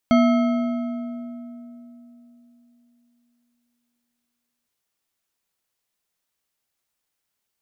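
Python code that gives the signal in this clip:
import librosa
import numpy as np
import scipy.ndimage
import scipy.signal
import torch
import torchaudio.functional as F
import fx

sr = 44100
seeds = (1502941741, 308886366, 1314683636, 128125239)

y = fx.strike_metal(sr, length_s=4.56, level_db=-12.5, body='bar', hz=240.0, decay_s=3.7, tilt_db=5.5, modes=7)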